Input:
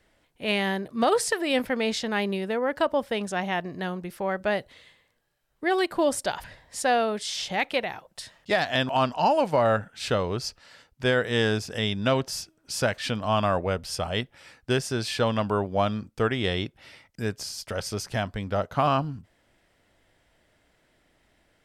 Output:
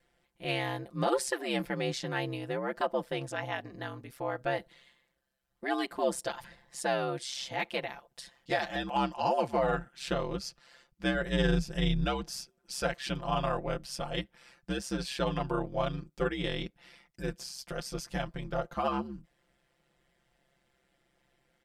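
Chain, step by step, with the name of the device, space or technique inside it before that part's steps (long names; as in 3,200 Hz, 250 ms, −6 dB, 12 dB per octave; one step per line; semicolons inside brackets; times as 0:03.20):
0:11.14–0:12.28: parametric band 93 Hz +13.5 dB 0.73 octaves
ring-modulated robot voice (ring modulation 66 Hz; comb filter 5.8 ms, depth 75%)
level −6 dB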